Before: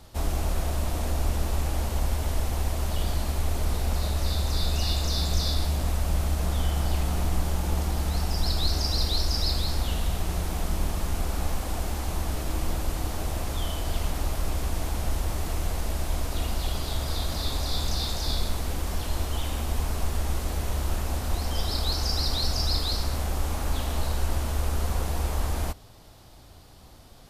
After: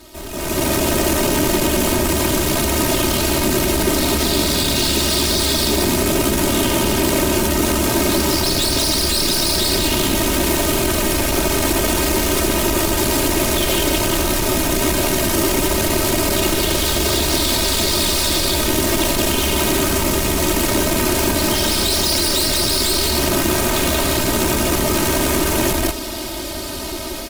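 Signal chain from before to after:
lower of the sound and its delayed copy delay 3.2 ms
brickwall limiter −23 dBFS, peak gain reduction 9.5 dB
single-tap delay 182 ms −3 dB
sine wavefolder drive 7 dB, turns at −22.5 dBFS
spectral tilt +1.5 dB per octave
soft clipping −28.5 dBFS, distortion −11 dB
comb filter 3.2 ms, depth 72%
automatic gain control gain up to 15.5 dB
graphic EQ with 15 bands 160 Hz +11 dB, 400 Hz +11 dB, 2,500 Hz +3 dB
level −6 dB

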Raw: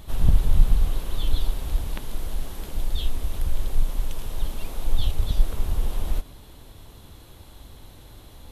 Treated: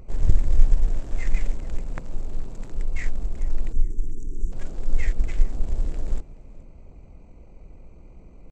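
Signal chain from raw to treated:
adaptive Wiener filter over 15 samples
time-frequency box erased 0:03.72–0:04.52, 790–9,500 Hz
pitch shifter −9 semitones
repeating echo 425 ms, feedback 27%, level −21.5 dB
level +1.5 dB

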